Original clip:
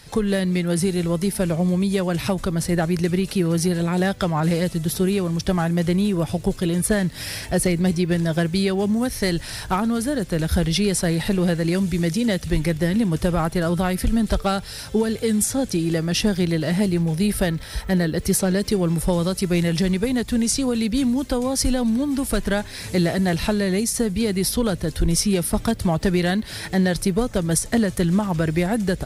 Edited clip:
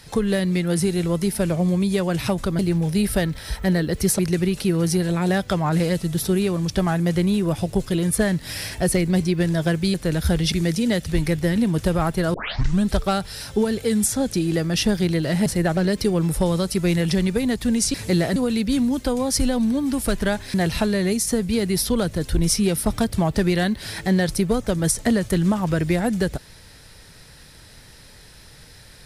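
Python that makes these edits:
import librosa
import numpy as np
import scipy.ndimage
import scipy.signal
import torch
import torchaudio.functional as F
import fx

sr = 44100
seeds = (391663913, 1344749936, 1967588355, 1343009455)

y = fx.edit(x, sr, fx.swap(start_s=2.59, length_s=0.31, other_s=16.84, other_length_s=1.6),
    fx.cut(start_s=8.65, length_s=1.56),
    fx.cut(start_s=10.79, length_s=1.11),
    fx.tape_start(start_s=13.72, length_s=0.52),
    fx.move(start_s=22.79, length_s=0.42, to_s=20.61), tone=tone)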